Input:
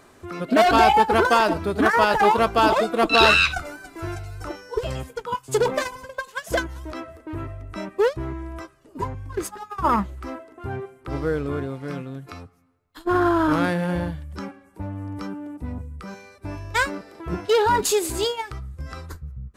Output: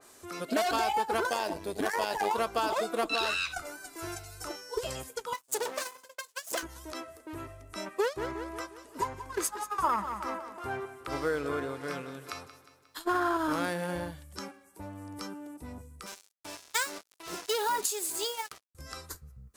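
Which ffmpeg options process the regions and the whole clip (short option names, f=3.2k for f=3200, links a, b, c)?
-filter_complex "[0:a]asettb=1/sr,asplit=3[a][b][c];[a]atrim=end=1.304[d];[b]atrim=start=1.3:end=2.31,asetpts=PTS-STARTPTS,afade=t=in:d=0.004:c=qsin,afade=t=out:st=1.006:d=0.004:c=qsin,equalizer=f=1.3k:w=5.7:g=-14.5,tremolo=f=99:d=0.667[e];[c]atrim=start=2.306[f];[d][e]acrossfade=d=0.004:c1=hsin:c2=qsin[g];[g][f]acrossfade=d=0.004:c1=qsin:c2=hsin,asettb=1/sr,asplit=3[h][i][j];[h]atrim=end=5.334[k];[i]atrim=start=5.33:end=6.63,asetpts=PTS-STARTPTS,afade=t=in:d=0.004:c=qsin,afade=t=out:st=1.296:d=0.004:c=qsin,aeval=exprs='max(val(0),0)':c=same,highpass=250,agate=range=-33dB:threshold=-41dB:ratio=3:release=100:detection=peak[l];[j]atrim=start=6.626[m];[k][l]acrossfade=d=0.004:c1=hsin:c2=qsin[n];[n][m]acrossfade=d=0.004:c1=qsin:c2=hsin,asettb=1/sr,asplit=3[o][p][q];[o]atrim=end=7.864[r];[p]atrim=start=7.86:end=13.37,asetpts=PTS-STARTPTS,afade=t=in:d=0.004:c=qsin,afade=t=out:st=5.506:d=0.004:c=qsin,equalizer=f=1.5k:t=o:w=2.9:g=6.5,aecho=1:1:179|358|537|716|895:0.2|0.104|0.054|0.0281|0.0146,atrim=end_sample=242991[s];[q]atrim=start=13.366[t];[r][s]acrossfade=d=0.004:c1=hsin:c2=qsin[u];[u][t]acrossfade=d=0.004:c1=qsin:c2=hsin,asettb=1/sr,asplit=3[v][w][x];[v]atrim=end=16.064[y];[w]atrim=start=16.06:end=18.75,asetpts=PTS-STARTPTS,afade=t=in:d=0.004:c=qsin,afade=t=out:st=2.686:d=0.004:c=qsin,highpass=f=450:p=1,acrusher=bits=5:mix=0:aa=0.5[z];[x]atrim=start=18.746[aa];[y][z]acrossfade=d=0.004:c1=hsin:c2=qsin[ab];[ab][aa]acrossfade=d=0.004:c1=qsin:c2=hsin,bass=f=250:g=-9,treble=f=4k:g=14,acompressor=threshold=-19dB:ratio=5,adynamicequalizer=threshold=0.00891:dfrequency=2700:dqfactor=0.7:tfrequency=2700:tqfactor=0.7:attack=5:release=100:ratio=0.375:range=3:mode=cutabove:tftype=highshelf,volume=-6dB"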